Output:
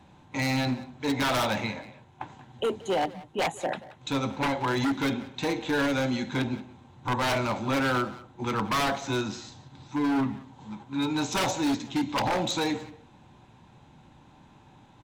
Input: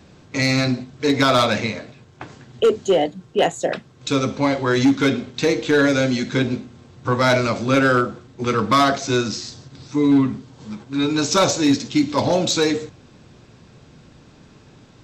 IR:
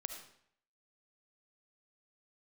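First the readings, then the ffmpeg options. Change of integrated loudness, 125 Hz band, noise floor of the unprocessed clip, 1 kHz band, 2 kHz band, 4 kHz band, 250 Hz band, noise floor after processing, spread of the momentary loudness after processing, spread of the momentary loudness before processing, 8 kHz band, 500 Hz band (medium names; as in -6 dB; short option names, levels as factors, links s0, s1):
-9.0 dB, -8.5 dB, -49 dBFS, -6.5 dB, -8.0 dB, -8.5 dB, -9.0 dB, -55 dBFS, 13 LU, 11 LU, -10.5 dB, -11.5 dB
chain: -filter_complex "[0:a]superequalizer=7b=0.562:9b=3.16:14b=0.355:15b=0.631:16b=2.51,aeval=exprs='0.224*(abs(mod(val(0)/0.224+3,4)-2)-1)':c=same,asplit=2[s0][s1];[s1]adelay=180,highpass=300,lowpass=3400,asoftclip=type=hard:threshold=0.0841,volume=0.2[s2];[s0][s2]amix=inputs=2:normalize=0,volume=0.422"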